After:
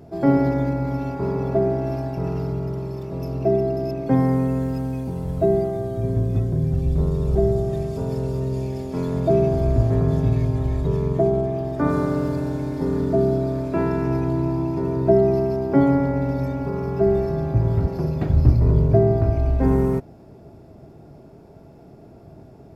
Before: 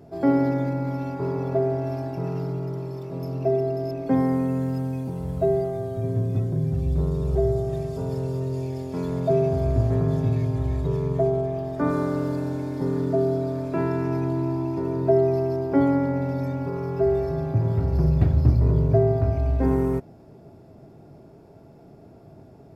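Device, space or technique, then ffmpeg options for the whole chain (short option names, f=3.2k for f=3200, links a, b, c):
octave pedal: -filter_complex "[0:a]asettb=1/sr,asplit=3[a][b][c];[a]atrim=end=17.874[d];[b]atrim=start=17.87:end=18.3,asetpts=PTS-STARTPTS,afade=t=in:d=0.004:c=qsin,afade=t=out:st=0.426:d=0.004:c=qsin,highpass=190[e];[c]atrim=start=18.296[f];[d][e]acrossfade=d=0.004:c1=hsin:c2=qsin[g];[g][f]acrossfade=d=0.004:c1=qsin:c2=hsin,asplit=2[h][i];[i]asetrate=22050,aresample=44100,atempo=2,volume=-9dB[j];[h][j]amix=inputs=2:normalize=0,volume=2.5dB"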